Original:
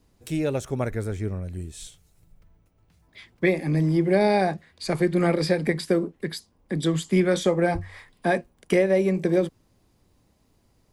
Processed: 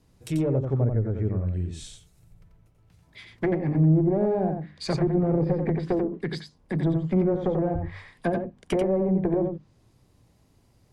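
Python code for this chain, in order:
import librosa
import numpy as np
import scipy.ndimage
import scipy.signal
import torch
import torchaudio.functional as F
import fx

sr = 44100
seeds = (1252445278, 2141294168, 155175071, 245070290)

p1 = fx.clip_asym(x, sr, top_db=-22.5, bottom_db=-14.5)
p2 = fx.peak_eq(p1, sr, hz=120.0, db=7.0, octaves=0.86)
p3 = fx.hum_notches(p2, sr, base_hz=50, count=6)
p4 = fx.env_lowpass_down(p3, sr, base_hz=540.0, full_db=-20.0)
y = p4 + fx.echo_single(p4, sr, ms=89, db=-5.5, dry=0)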